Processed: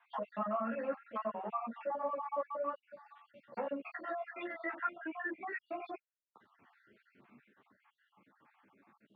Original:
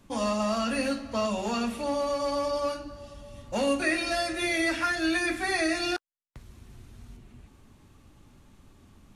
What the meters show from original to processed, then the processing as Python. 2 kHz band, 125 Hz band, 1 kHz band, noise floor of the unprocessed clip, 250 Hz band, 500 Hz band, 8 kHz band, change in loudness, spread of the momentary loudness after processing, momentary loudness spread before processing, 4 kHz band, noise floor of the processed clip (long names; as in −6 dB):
−14.0 dB, below −15 dB, −6.5 dB, −58 dBFS, −15.5 dB, −10.5 dB, below −40 dB, −11.5 dB, 11 LU, 9 LU, −30.5 dB, −85 dBFS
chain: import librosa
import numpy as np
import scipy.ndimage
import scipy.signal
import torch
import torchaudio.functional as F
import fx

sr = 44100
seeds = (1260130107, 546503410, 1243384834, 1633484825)

p1 = fx.spec_dropout(x, sr, seeds[0], share_pct=58)
p2 = np.clip(10.0 ** (28.0 / 20.0) * p1, -1.0, 1.0) / 10.0 ** (28.0 / 20.0)
p3 = p1 + F.gain(torch.from_numpy(p2), -6.5).numpy()
p4 = scipy.signal.sosfilt(scipy.signal.butter(4, 150.0, 'highpass', fs=sr, output='sos'), p3)
p5 = fx.dynamic_eq(p4, sr, hz=310.0, q=1.5, threshold_db=-42.0, ratio=4.0, max_db=-4)
p6 = fx.rider(p5, sr, range_db=10, speed_s=2.0)
p7 = scipy.signal.sosfilt(scipy.signal.butter(4, 2000.0, 'lowpass', fs=sr, output='sos'), p6)
p8 = fx.tilt_eq(p7, sr, slope=4.0)
p9 = fx.env_lowpass_down(p8, sr, base_hz=1200.0, full_db=-30.0)
p10 = fx.ensemble(p9, sr)
y = F.gain(torch.from_numpy(p10), -2.5).numpy()